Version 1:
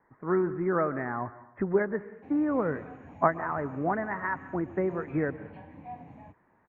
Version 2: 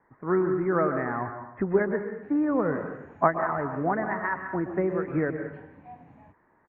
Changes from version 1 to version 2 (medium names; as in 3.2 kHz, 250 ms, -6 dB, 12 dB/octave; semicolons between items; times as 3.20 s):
speech: send +11.0 dB; background -4.0 dB